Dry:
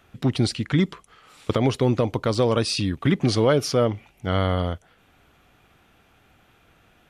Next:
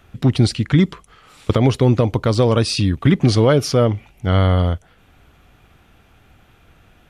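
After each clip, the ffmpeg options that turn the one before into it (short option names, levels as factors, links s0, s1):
-af "lowshelf=f=120:g=10,volume=1.5"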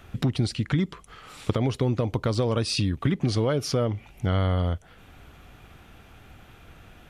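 -af "acompressor=threshold=0.0447:ratio=3,volume=1.26"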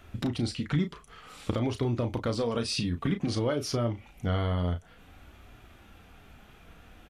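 -filter_complex "[0:a]flanger=delay=2.9:depth=2:regen=-52:speed=0.54:shape=triangular,asplit=2[s0][s1];[s1]adelay=34,volume=0.376[s2];[s0][s2]amix=inputs=2:normalize=0"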